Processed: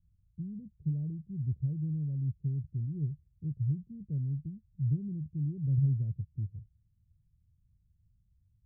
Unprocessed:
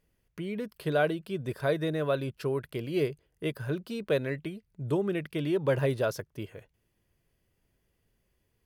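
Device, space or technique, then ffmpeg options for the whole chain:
the neighbour's flat through the wall: -af "lowpass=f=160:w=0.5412,lowpass=f=160:w=1.3066,equalizer=f=84:t=o:w=0.99:g=7,volume=1.58"

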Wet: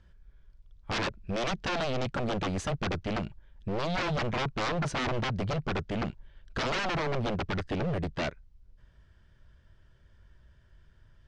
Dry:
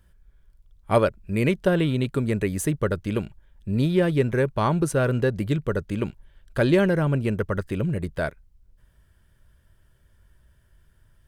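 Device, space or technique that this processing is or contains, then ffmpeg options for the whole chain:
synthesiser wavefolder: -af "aeval=exprs='0.0562*(abs(mod(val(0)/0.0562+3,4)-2)-1)':c=same,lowpass=f=6000:w=0.5412,lowpass=f=6000:w=1.3066"

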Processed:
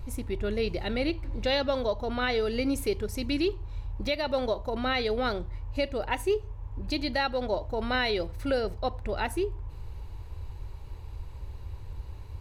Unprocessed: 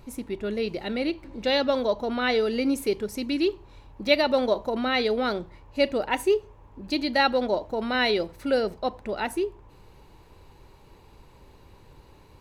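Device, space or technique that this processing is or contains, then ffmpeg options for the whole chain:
car stereo with a boomy subwoofer: -af "lowshelf=f=130:t=q:w=1.5:g=13.5,alimiter=limit=0.141:level=0:latency=1:release=496"

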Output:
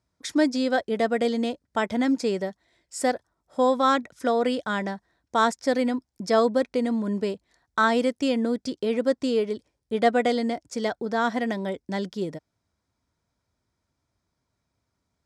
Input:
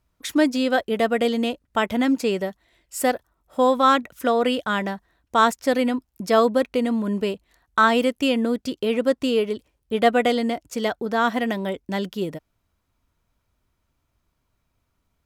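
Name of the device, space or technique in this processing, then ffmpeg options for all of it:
car door speaker: -af "highpass=80,equalizer=f=1200:t=q:w=4:g=-4,equalizer=f=2800:t=q:w=4:g=-9,equalizer=f=5200:t=q:w=4:g=5,lowpass=f=9300:w=0.5412,lowpass=f=9300:w=1.3066,volume=0.75"

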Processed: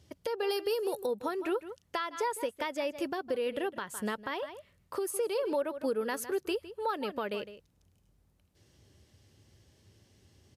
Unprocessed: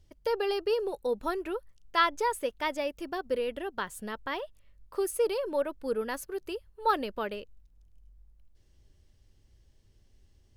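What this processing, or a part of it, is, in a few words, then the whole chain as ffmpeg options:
podcast mastering chain: -filter_complex "[0:a]asettb=1/sr,asplit=3[s0][s1][s2];[s0]atrim=end=0.504[s3];[s1]atrim=start=0.5:end=1.06,asetpts=PTS-STARTPTS,afade=t=in:d=0.004:c=qsin,afade=t=out:st=0.556:d=0.004:c=qsin,aemphasis=mode=production:type=50fm[s4];[s2]atrim=start=1.056[s5];[s3][s4]acrossfade=d=0.004:c1=hsin:c2=qsin[s6];[s6][s5]acrossfade=d=0.004:c1=qsin:c2=hsin,highpass=f=88:w=0.5412,highpass=f=88:w=1.3066,asplit=2[s7][s8];[s8]adelay=157.4,volume=0.141,highshelf=f=4000:g=-3.54[s9];[s7][s9]amix=inputs=2:normalize=0,acompressor=threshold=0.0178:ratio=3,alimiter=level_in=2:limit=0.0631:level=0:latency=1:release=361,volume=0.501,volume=2.51" -ar 32000 -c:a libmp3lame -b:a 96k

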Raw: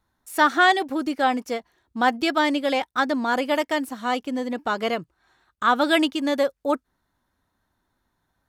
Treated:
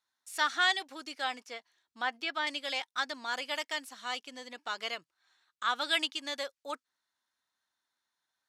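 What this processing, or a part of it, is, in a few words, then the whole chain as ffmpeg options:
piezo pickup straight into a mixer: -filter_complex "[0:a]asettb=1/sr,asplit=3[s0][s1][s2];[s0]atrim=end=1.324[s3];[s1]atrim=start=1.32:end=2.47,asetpts=PTS-STARTPTS,afade=t=in:d=0.004:c=qsin,afade=t=out:st=1.146:d=0.004:c=qsin,acrossover=split=3300[s4][s5];[s5]acompressor=threshold=0.00398:ratio=4:attack=1:release=60[s6];[s4][s6]amix=inputs=2:normalize=0[s7];[s2]atrim=start=2.466[s8];[s3][s7]acrossfade=d=0.004:c1=hsin:c2=qsin[s9];[s9][s8]acrossfade=d=0.004:c1=qsin:c2=hsin,lowpass=5300,aderivative,volume=1.58"

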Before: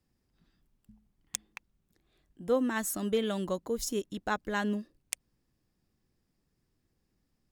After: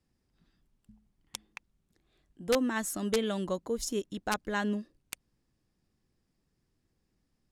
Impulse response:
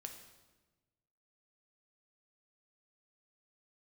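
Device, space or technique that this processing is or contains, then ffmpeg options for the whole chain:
overflowing digital effects unit: -af "aeval=exprs='(mod(7.94*val(0)+1,2)-1)/7.94':c=same,lowpass=11000"

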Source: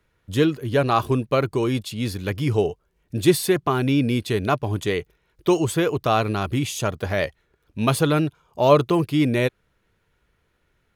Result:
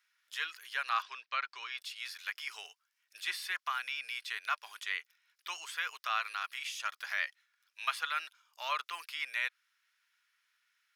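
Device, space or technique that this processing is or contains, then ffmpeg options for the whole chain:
headphones lying on a table: -filter_complex "[0:a]acrossover=split=2900[s0][s1];[s1]acompressor=threshold=0.00562:ratio=4:attack=1:release=60[s2];[s0][s2]amix=inputs=2:normalize=0,highpass=f=1400:w=0.5412,highpass=f=1400:w=1.3066,equalizer=f=5300:t=o:w=0.32:g=7.5,asettb=1/sr,asplit=3[s3][s4][s5];[s3]atrim=end=1.024[s6];[s4]atrim=start=1.02:end=1.78,asetpts=PTS-STARTPTS,afade=t=in:d=0.004:c=qsin,afade=t=out:st=0.756:d=0.004:c=qsin,lowpass=f=5200:w=0.5412,lowpass=f=5200:w=1.3066[s7];[s5]atrim=start=1.776[s8];[s6][s7]acrossfade=d=0.004:c1=hsin:c2=qsin[s9];[s9][s8]acrossfade=d=0.004:c1=qsin:c2=hsin,volume=0.75"

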